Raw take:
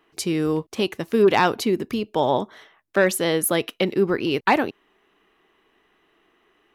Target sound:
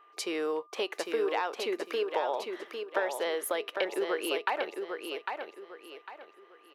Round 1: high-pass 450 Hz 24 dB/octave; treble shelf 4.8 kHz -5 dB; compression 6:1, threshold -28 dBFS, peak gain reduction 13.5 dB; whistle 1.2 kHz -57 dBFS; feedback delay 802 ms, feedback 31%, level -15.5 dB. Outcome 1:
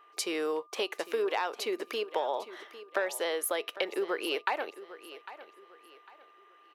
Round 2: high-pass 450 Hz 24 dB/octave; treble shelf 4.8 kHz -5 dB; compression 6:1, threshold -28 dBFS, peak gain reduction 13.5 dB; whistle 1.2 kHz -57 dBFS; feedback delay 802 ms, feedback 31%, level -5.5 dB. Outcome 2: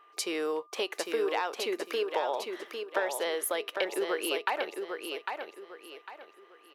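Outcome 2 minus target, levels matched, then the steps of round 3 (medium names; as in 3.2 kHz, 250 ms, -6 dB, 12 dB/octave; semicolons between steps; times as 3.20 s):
8 kHz band +4.0 dB
high-pass 450 Hz 24 dB/octave; treble shelf 4.8 kHz -12.5 dB; compression 6:1, threshold -28 dBFS, peak gain reduction 13 dB; whistle 1.2 kHz -57 dBFS; feedback delay 802 ms, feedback 31%, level -5.5 dB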